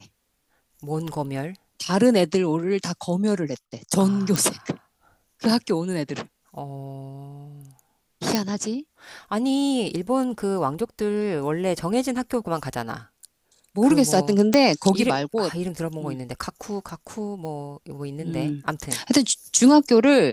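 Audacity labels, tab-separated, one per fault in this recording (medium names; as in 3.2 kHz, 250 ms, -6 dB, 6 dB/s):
4.360000	4.360000	pop
8.350000	8.350000	pop -6 dBFS
14.540000	14.540000	pop -4 dBFS
17.450000	17.450000	pop -23 dBFS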